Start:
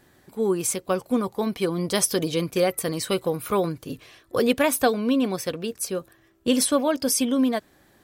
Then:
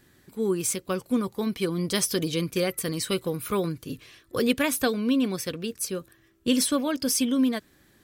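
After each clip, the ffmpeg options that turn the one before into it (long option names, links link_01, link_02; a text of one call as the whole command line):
ffmpeg -i in.wav -filter_complex "[0:a]equalizer=frequency=730:width_type=o:width=1.2:gain=-9.5,acrossover=split=7300[link_01][link_02];[link_02]asoftclip=type=hard:threshold=-26.5dB[link_03];[link_01][link_03]amix=inputs=2:normalize=0" out.wav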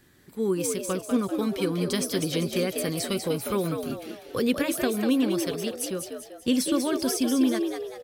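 ffmpeg -i in.wav -filter_complex "[0:a]acrossover=split=430[link_01][link_02];[link_02]acompressor=threshold=-28dB:ratio=6[link_03];[link_01][link_03]amix=inputs=2:normalize=0,asplit=2[link_04][link_05];[link_05]asplit=5[link_06][link_07][link_08][link_09][link_10];[link_06]adelay=195,afreqshift=75,volume=-6dB[link_11];[link_07]adelay=390,afreqshift=150,volume=-13.3dB[link_12];[link_08]adelay=585,afreqshift=225,volume=-20.7dB[link_13];[link_09]adelay=780,afreqshift=300,volume=-28dB[link_14];[link_10]adelay=975,afreqshift=375,volume=-35.3dB[link_15];[link_11][link_12][link_13][link_14][link_15]amix=inputs=5:normalize=0[link_16];[link_04][link_16]amix=inputs=2:normalize=0" out.wav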